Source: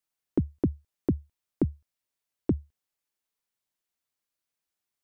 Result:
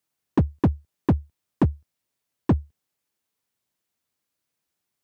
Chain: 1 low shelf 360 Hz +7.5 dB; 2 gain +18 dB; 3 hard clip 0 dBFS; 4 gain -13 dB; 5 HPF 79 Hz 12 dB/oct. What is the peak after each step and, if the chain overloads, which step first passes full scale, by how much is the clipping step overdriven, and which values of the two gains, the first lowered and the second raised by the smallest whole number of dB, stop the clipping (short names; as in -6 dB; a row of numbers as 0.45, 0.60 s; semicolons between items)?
-9.5, +8.5, 0.0, -13.0, -9.0 dBFS; step 2, 8.5 dB; step 2 +9 dB, step 4 -4 dB